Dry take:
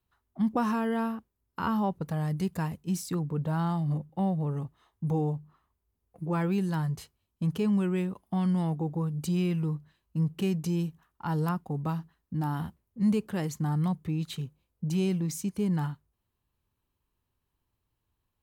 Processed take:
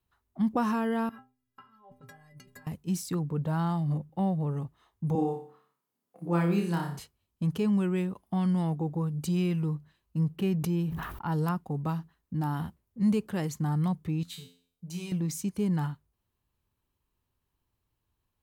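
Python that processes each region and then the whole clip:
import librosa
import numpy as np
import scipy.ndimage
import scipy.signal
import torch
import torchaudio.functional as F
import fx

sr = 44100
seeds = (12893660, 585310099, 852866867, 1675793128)

y = fx.chain(x, sr, fx.peak_eq(hz=1700.0, db=8.5, octaves=1.4),
    fx.over_compress(threshold_db=-34.0, ratio=-0.5),
    fx.stiff_resonator(f0_hz=120.0, decay_s=0.46, stiffness=0.03), at=(1.09, 2.67))
y = fx.chain(y, sr, fx.highpass(hz=170.0, slope=24),
    fx.room_flutter(wall_m=5.0, rt60_s=0.46), at=(5.15, 6.99))
y = fx.chain(y, sr, fx.peak_eq(hz=7000.0, db=-9.5, octaves=1.4),
    fx.sustainer(db_per_s=42.0), at=(10.36, 11.32))
y = fx.chain(y, sr, fx.high_shelf(hz=2000.0, db=10.0),
    fx.comb_fb(f0_hz=87.0, decay_s=0.46, harmonics='all', damping=0.0, mix_pct=90), at=(14.23, 15.12))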